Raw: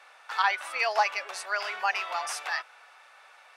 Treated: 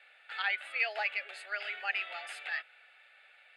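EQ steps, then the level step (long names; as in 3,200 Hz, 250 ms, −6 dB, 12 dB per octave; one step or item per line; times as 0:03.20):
high-pass filter 850 Hz 6 dB per octave
high-frequency loss of the air 75 metres
phaser with its sweep stopped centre 2,500 Hz, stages 4
0.0 dB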